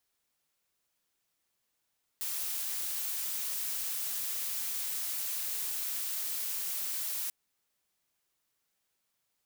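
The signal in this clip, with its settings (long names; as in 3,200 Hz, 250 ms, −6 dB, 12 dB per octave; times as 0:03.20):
noise blue, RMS −35 dBFS 5.09 s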